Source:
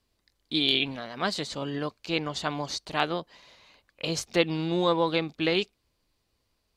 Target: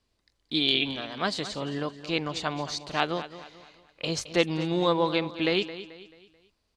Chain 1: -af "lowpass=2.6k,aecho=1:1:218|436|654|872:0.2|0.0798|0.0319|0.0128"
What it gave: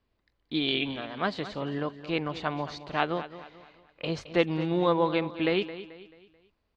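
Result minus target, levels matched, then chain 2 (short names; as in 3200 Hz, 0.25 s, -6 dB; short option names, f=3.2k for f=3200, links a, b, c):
8000 Hz band -14.5 dB
-af "lowpass=9k,aecho=1:1:218|436|654|872:0.2|0.0798|0.0319|0.0128"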